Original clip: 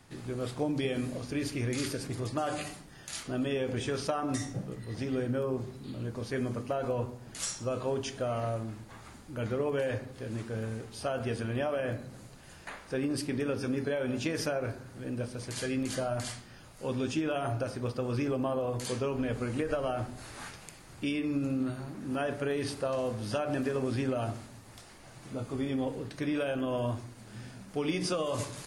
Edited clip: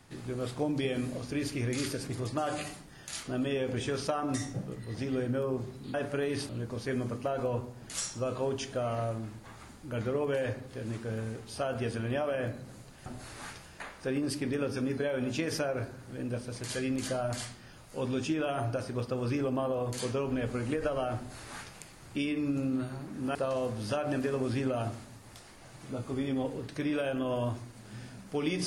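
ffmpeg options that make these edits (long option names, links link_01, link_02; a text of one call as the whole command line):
ffmpeg -i in.wav -filter_complex "[0:a]asplit=6[link_01][link_02][link_03][link_04][link_05][link_06];[link_01]atrim=end=5.942[link_07];[link_02]atrim=start=22.218:end=22.772[link_08];[link_03]atrim=start=5.938:end=12.512[link_09];[link_04]atrim=start=20.038:end=20.622[link_10];[link_05]atrim=start=12.508:end=22.222[link_11];[link_06]atrim=start=22.768[link_12];[link_07][link_08]acrossfade=duration=0.004:curve1=hsin:curve2=hsin[link_13];[link_13][link_09]acrossfade=duration=0.004:curve1=hsin:curve2=hsin[link_14];[link_14][link_10]acrossfade=duration=0.004:curve1=hsin:curve2=hsin[link_15];[link_15][link_11]acrossfade=duration=0.004:curve1=hsin:curve2=hsin[link_16];[link_16][link_12]acrossfade=duration=0.004:curve1=hsin:curve2=hsin" out.wav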